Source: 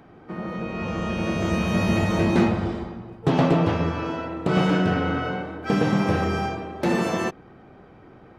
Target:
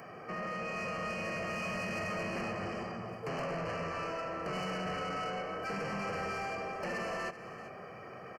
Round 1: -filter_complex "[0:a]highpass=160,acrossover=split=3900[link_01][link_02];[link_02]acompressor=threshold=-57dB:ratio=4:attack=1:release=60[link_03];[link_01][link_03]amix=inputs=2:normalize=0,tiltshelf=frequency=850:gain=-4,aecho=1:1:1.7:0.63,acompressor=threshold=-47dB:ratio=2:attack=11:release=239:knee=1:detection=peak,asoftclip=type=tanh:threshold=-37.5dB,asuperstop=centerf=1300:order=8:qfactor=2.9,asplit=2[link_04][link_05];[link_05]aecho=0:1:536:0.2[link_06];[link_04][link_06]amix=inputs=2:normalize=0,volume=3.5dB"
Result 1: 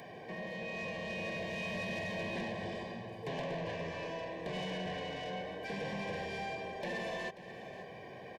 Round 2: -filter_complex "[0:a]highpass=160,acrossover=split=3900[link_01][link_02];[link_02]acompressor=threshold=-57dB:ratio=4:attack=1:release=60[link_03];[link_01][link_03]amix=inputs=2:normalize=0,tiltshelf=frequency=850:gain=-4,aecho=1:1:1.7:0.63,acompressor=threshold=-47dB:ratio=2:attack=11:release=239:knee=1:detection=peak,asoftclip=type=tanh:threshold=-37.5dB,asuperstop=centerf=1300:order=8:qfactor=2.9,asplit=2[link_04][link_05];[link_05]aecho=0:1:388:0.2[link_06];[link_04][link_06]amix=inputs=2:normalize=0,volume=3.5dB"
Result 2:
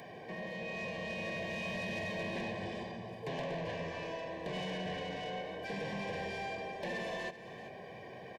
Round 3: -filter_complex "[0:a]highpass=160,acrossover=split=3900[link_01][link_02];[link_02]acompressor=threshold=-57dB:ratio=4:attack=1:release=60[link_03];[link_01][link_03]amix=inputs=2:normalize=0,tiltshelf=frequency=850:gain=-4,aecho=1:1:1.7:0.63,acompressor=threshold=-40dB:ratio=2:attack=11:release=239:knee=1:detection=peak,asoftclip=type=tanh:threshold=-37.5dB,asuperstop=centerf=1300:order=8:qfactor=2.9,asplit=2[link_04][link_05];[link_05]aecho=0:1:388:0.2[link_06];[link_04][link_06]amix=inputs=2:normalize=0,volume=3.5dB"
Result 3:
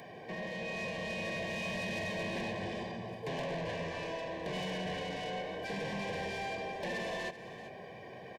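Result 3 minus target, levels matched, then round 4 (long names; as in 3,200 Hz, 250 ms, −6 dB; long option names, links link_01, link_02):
4,000 Hz band +4.0 dB
-filter_complex "[0:a]highpass=160,acrossover=split=3900[link_01][link_02];[link_02]acompressor=threshold=-57dB:ratio=4:attack=1:release=60[link_03];[link_01][link_03]amix=inputs=2:normalize=0,tiltshelf=frequency=850:gain=-4,aecho=1:1:1.7:0.63,acompressor=threshold=-40dB:ratio=2:attack=11:release=239:knee=1:detection=peak,asoftclip=type=tanh:threshold=-37.5dB,asuperstop=centerf=3600:order=8:qfactor=2.9,asplit=2[link_04][link_05];[link_05]aecho=0:1:388:0.2[link_06];[link_04][link_06]amix=inputs=2:normalize=0,volume=3.5dB"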